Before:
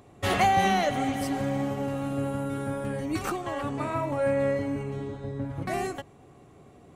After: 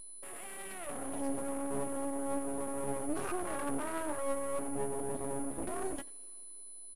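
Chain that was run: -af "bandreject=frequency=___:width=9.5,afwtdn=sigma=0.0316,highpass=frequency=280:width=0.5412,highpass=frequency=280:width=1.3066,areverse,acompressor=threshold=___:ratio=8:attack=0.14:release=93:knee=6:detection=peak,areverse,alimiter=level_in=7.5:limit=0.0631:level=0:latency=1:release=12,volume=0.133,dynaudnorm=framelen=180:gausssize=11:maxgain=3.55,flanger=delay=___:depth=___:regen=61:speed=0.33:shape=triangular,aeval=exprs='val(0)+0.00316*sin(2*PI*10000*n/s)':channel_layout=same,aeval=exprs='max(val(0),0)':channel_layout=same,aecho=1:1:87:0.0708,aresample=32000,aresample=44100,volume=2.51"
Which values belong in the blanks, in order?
770, 0.0158, 6.3, 9.8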